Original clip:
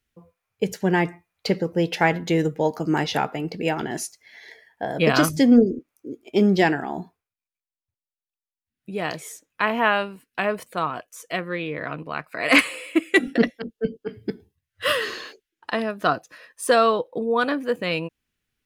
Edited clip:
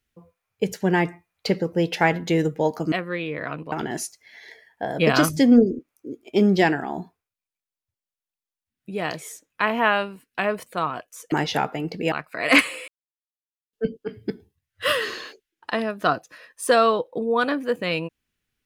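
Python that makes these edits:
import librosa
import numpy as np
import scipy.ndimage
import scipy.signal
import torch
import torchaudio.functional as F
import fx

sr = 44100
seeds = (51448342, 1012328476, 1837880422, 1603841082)

y = fx.edit(x, sr, fx.swap(start_s=2.92, length_s=0.8, other_s=11.32, other_length_s=0.8),
    fx.silence(start_s=12.88, length_s=0.85), tone=tone)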